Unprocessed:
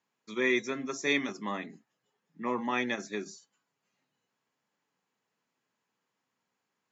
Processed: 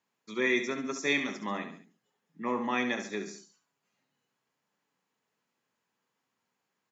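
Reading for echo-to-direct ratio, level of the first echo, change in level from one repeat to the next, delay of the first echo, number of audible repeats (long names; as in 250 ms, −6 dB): −8.0 dB, −9.0 dB, −7.0 dB, 69 ms, 3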